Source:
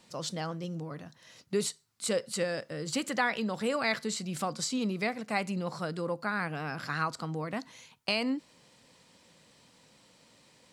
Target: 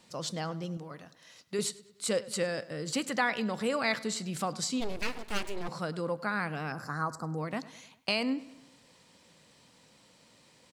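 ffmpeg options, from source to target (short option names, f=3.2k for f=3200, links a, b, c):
-filter_complex "[0:a]asettb=1/sr,asplit=3[a][b][c];[a]atrim=end=0.774[d];[b]atrim=start=0.77:end=1.59,asetpts=PTS-STARTPTS,afade=t=in:d=0.004:c=qsin,afade=t=out:st=0.816:d=0.004:c=qsin,lowshelf=f=420:g=-8[e];[c]atrim=start=1.586[f];[d][e]acrossfade=d=0.004:c1=hsin:c2=qsin[g];[g][f]acrossfade=d=0.004:c1=qsin:c2=hsin,asettb=1/sr,asplit=3[h][i][j];[h]atrim=end=6.724[k];[i]atrim=start=6.72:end=7.38,asetpts=PTS-STARTPTS,afade=t=in:d=0.004:c=qsin,afade=t=out:st=0.656:d=0.004:c=qsin,asuperstop=centerf=2900:order=4:qfactor=0.68[l];[j]atrim=start=7.376[m];[k][l]acrossfade=d=0.004:c1=hsin:c2=qsin[n];[n][m]acrossfade=d=0.004:c1=qsin:c2=hsin,asplit=2[o][p];[p]adelay=102,lowpass=f=4.7k:p=1,volume=-18.5dB,asplit=2[q][r];[r]adelay=102,lowpass=f=4.7k:p=1,volume=0.53,asplit=2[s][t];[t]adelay=102,lowpass=f=4.7k:p=1,volume=0.53,asplit=2[u][v];[v]adelay=102,lowpass=f=4.7k:p=1,volume=0.53[w];[o][q][s][u][w]amix=inputs=5:normalize=0,asplit=3[x][y][z];[x]afade=t=out:st=4.8:d=0.02[aa];[y]aeval=exprs='abs(val(0))':c=same,afade=t=in:st=4.8:d=0.02,afade=t=out:st=5.67:d=0.02[ab];[z]afade=t=in:st=5.67:d=0.02[ac];[aa][ab][ac]amix=inputs=3:normalize=0"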